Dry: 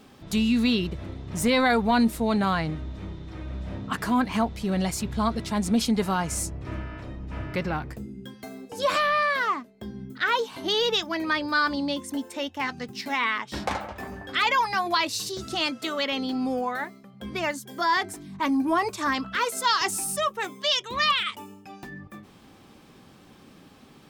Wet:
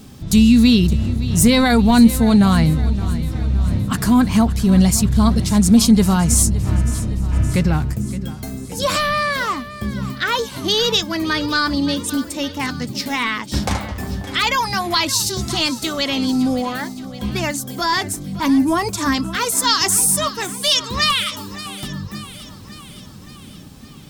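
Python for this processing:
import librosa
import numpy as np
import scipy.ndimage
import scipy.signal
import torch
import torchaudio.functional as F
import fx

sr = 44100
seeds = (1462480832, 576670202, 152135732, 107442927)

p1 = fx.bass_treble(x, sr, bass_db=15, treble_db=12)
p2 = p1 + fx.echo_feedback(p1, sr, ms=567, feedback_pct=59, wet_db=-15.5, dry=0)
y = p2 * librosa.db_to_amplitude(3.0)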